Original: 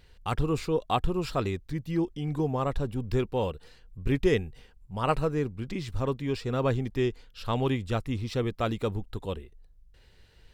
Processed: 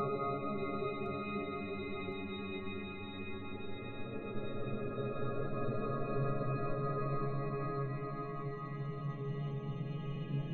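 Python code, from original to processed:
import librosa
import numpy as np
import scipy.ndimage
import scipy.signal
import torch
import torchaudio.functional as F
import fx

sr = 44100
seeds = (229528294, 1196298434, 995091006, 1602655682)

p1 = fx.reverse_delay(x, sr, ms=193, wet_db=-10)
p2 = fx.gate_flip(p1, sr, shuts_db=-26.0, range_db=-25)
p3 = fx.leveller(p2, sr, passes=5)
p4 = fx.hum_notches(p3, sr, base_hz=50, count=4)
p5 = fx.resonator_bank(p4, sr, root=49, chord='fifth', decay_s=0.39)
p6 = fx.spec_topn(p5, sr, count=32)
p7 = fx.paulstretch(p6, sr, seeds[0], factor=24.0, window_s=0.25, from_s=1.45)
p8 = p7 + fx.echo_thinned(p7, sr, ms=1062, feedback_pct=64, hz=420.0, wet_db=-17.0, dry=0)
y = F.gain(torch.from_numpy(p8), 15.5).numpy()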